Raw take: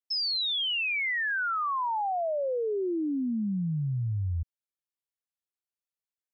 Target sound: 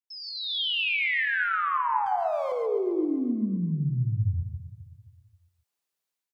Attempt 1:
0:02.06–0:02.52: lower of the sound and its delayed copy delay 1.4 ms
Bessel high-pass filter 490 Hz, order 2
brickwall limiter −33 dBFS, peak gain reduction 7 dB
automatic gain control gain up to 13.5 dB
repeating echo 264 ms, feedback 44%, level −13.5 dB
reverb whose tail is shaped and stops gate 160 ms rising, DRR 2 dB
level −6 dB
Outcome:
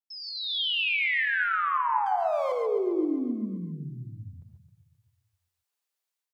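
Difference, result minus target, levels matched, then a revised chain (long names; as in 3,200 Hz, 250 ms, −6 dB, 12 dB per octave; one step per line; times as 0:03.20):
125 Hz band −12.0 dB
0:02.06–0:02.52: lower of the sound and its delayed copy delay 1.4 ms
Bessel high-pass filter 150 Hz, order 2
brickwall limiter −33 dBFS, peak gain reduction 8 dB
automatic gain control gain up to 13.5 dB
repeating echo 264 ms, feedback 44%, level −13.5 dB
reverb whose tail is shaped and stops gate 160 ms rising, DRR 2 dB
level −6 dB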